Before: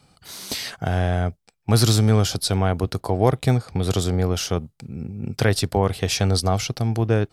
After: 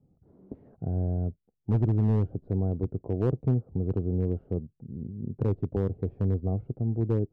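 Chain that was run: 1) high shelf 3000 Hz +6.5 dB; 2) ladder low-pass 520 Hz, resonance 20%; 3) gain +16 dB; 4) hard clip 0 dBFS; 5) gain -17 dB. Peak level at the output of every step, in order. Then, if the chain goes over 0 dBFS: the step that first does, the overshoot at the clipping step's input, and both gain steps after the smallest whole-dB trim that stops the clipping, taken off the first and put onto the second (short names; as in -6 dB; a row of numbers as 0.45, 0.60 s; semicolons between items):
-3.0, -10.5, +5.5, 0.0, -17.0 dBFS; step 3, 5.5 dB; step 3 +10 dB, step 5 -11 dB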